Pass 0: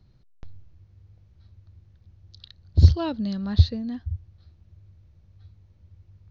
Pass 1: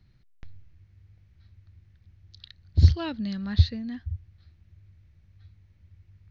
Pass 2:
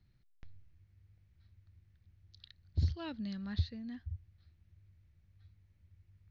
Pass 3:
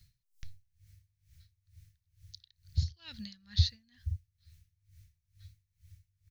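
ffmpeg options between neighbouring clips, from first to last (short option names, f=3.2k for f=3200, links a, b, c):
-af "equalizer=f=500:t=o:w=1:g=-5,equalizer=f=1k:t=o:w=1:g=-3,equalizer=f=2k:t=o:w=1:g=9,volume=-2.5dB"
-af "alimiter=limit=-13dB:level=0:latency=1:release=269,volume=-9dB"
-af "firequalizer=gain_entry='entry(140,0);entry(280,-20);entry(1700,0);entry(6000,15)':delay=0.05:min_phase=1,aeval=exprs='val(0)*pow(10,-24*(0.5-0.5*cos(2*PI*2.2*n/s))/20)':c=same,volume=8dB"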